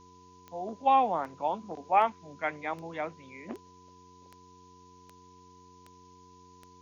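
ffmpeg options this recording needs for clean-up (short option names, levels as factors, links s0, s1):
-af "adeclick=t=4,bandreject=f=90.6:t=h:w=4,bandreject=f=181.2:t=h:w=4,bandreject=f=271.8:t=h:w=4,bandreject=f=362.4:t=h:w=4,bandreject=f=453:t=h:w=4,bandreject=f=1000:w=30,afftdn=nr=21:nf=-56"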